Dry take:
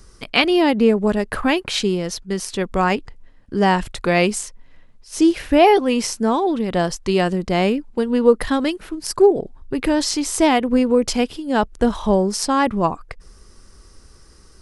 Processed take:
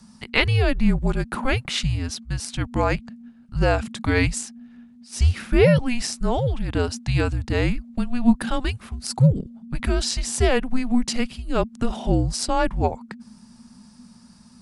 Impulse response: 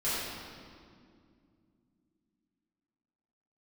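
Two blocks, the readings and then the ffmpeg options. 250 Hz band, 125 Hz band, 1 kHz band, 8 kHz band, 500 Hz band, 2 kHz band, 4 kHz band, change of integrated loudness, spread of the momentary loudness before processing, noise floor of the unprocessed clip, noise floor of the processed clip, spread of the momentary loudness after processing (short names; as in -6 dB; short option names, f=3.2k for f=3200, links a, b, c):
-5.5 dB, +7.0 dB, -9.0 dB, -3.5 dB, -7.5 dB, -3.0 dB, -4.5 dB, -4.5 dB, 9 LU, -48 dBFS, -50 dBFS, 10 LU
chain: -af "afreqshift=-250,volume=-3dB"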